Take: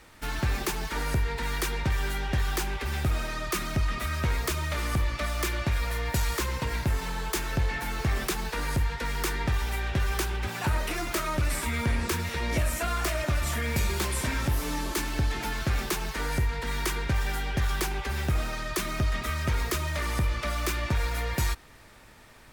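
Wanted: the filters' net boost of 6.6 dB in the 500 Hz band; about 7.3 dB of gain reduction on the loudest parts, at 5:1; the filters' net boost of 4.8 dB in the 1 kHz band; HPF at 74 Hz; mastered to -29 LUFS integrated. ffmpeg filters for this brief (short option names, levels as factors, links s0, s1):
-af "highpass=74,equalizer=f=500:t=o:g=7.5,equalizer=f=1000:t=o:g=4,acompressor=threshold=0.0316:ratio=5,volume=1.68"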